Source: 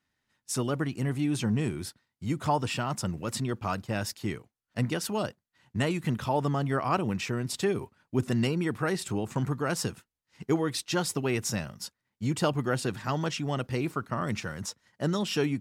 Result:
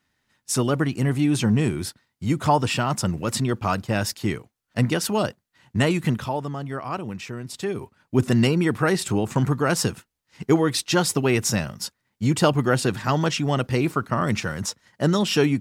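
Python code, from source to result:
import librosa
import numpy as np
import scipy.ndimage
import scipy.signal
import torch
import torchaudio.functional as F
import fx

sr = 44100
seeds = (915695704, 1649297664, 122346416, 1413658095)

y = fx.gain(x, sr, db=fx.line((6.06, 7.5), (6.46, -2.5), (7.52, -2.5), (8.21, 8.0)))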